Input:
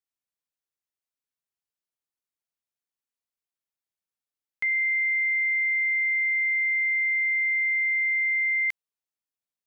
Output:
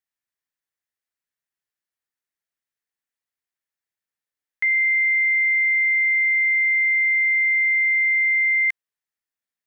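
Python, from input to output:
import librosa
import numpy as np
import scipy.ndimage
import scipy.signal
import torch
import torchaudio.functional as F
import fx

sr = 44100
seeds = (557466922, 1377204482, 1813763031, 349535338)

y = fx.peak_eq(x, sr, hz=1800.0, db=9.0, octaves=0.55)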